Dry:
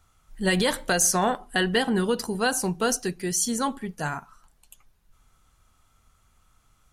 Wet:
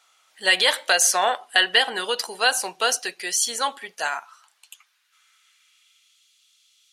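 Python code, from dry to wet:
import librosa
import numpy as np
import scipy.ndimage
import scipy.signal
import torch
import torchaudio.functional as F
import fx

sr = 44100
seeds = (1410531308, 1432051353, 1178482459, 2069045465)

y = fx.dynamic_eq(x, sr, hz=6000.0, q=1.2, threshold_db=-39.0, ratio=4.0, max_db=-5)
y = fx.filter_sweep_highpass(y, sr, from_hz=650.0, to_hz=3500.0, start_s=4.05, end_s=6.28, q=1.6)
y = fx.weighting(y, sr, curve='D')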